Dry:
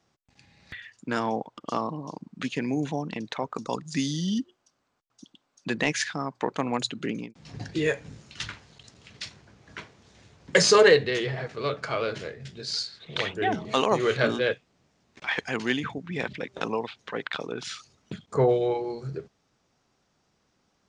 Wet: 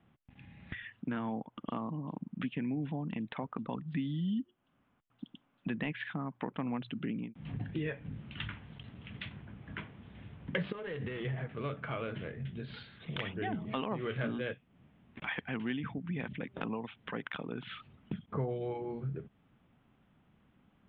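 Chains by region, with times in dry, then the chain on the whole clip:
0:10.72–0:11.25: gap after every zero crossing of 0.11 ms + downward compressor, threshold −29 dBFS
whole clip: Butterworth low-pass 3,400 Hz 72 dB per octave; low shelf with overshoot 310 Hz +6.5 dB, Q 1.5; downward compressor 2.5 to 1, threshold −39 dBFS

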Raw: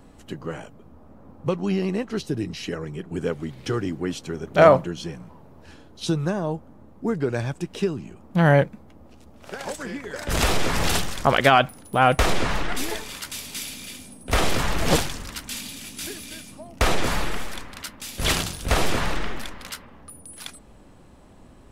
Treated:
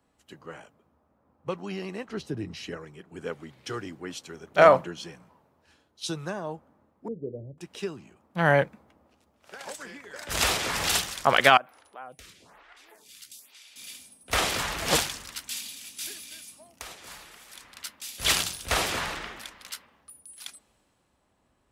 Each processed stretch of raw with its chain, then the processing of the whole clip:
0:02.08–0:02.77: spectral tilt −2 dB per octave + one half of a high-frequency compander encoder only
0:07.08–0:07.58: elliptic low-pass filter 530 Hz, stop band 60 dB + mains-hum notches 50/100/150/200/250/300/350/400 Hz
0:11.57–0:13.76: downward compressor 2.5 to 1, threshold −38 dBFS + phaser with staggered stages 1.1 Hz
0:16.42–0:17.64: high-shelf EQ 5,200 Hz +6.5 dB + downward compressor, threshold −31 dBFS
whole clip: high-pass filter 46 Hz; low-shelf EQ 500 Hz −11.5 dB; multiband upward and downward expander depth 40%; level −2 dB

